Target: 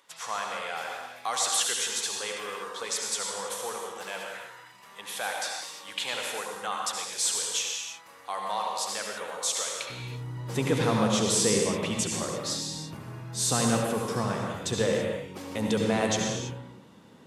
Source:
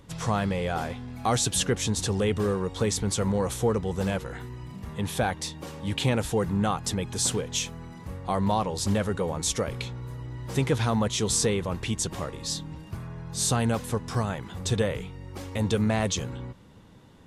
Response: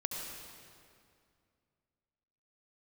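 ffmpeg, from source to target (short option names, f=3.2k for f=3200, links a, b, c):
-filter_complex "[0:a]asetnsamples=n=441:p=0,asendcmd='9.9 highpass f 180',highpass=960[a];[1:a]atrim=start_sample=2205,afade=t=out:st=0.39:d=0.01,atrim=end_sample=17640[b];[a][b]afir=irnorm=-1:irlink=0"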